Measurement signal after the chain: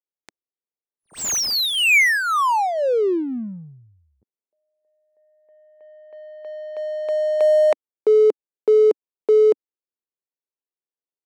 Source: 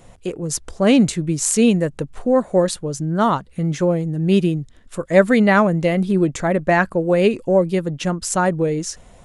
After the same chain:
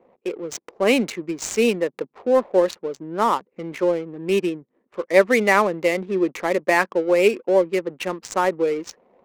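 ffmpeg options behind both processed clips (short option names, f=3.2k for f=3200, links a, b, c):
-af "highpass=f=290:w=0.5412,highpass=f=290:w=1.3066,equalizer=f=290:t=q:w=4:g=-6,equalizer=f=670:t=q:w=4:g=-7,equalizer=f=1.5k:t=q:w=4:g=-7,equalizer=f=2.3k:t=q:w=4:g=5,equalizer=f=3.4k:t=q:w=4:g=-8,equalizer=f=5k:t=q:w=4:g=-6,lowpass=f=6.6k:w=0.5412,lowpass=f=6.6k:w=1.3066,adynamicsmooth=sensitivity=8:basefreq=530,volume=1.5dB"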